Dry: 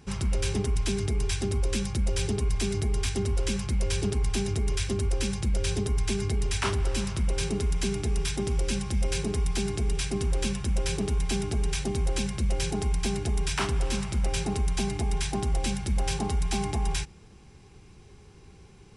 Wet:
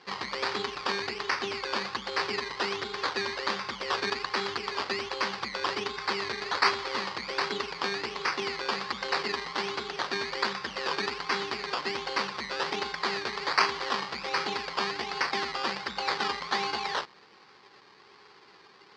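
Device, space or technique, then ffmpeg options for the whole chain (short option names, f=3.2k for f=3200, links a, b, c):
circuit-bent sampling toy: -af "acrusher=samples=17:mix=1:aa=0.000001:lfo=1:lforange=10.2:lforate=1.3,highpass=580,equalizer=f=650:t=q:w=4:g=-7,equalizer=f=1.1k:t=q:w=4:g=4,equalizer=f=1.9k:t=q:w=4:g=3,equalizer=f=4.6k:t=q:w=4:g=10,lowpass=f=5.2k:w=0.5412,lowpass=f=5.2k:w=1.3066,volume=5.5dB"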